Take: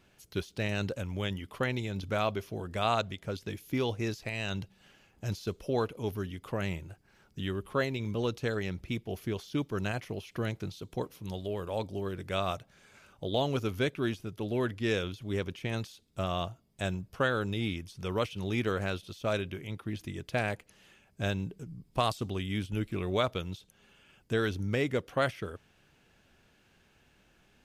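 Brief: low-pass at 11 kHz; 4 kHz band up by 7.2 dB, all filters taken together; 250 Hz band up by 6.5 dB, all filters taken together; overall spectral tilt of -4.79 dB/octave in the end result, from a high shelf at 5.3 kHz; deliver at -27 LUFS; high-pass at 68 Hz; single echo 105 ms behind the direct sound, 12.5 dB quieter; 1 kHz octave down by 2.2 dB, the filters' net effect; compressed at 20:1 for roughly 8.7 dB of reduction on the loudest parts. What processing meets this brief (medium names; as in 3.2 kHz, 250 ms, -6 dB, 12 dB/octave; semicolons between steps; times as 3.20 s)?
high-pass 68 Hz; low-pass 11 kHz; peaking EQ 250 Hz +8.5 dB; peaking EQ 1 kHz -4.5 dB; peaking EQ 4 kHz +7.5 dB; treble shelf 5.3 kHz +4.5 dB; compression 20:1, threshold -29 dBFS; delay 105 ms -12.5 dB; trim +9 dB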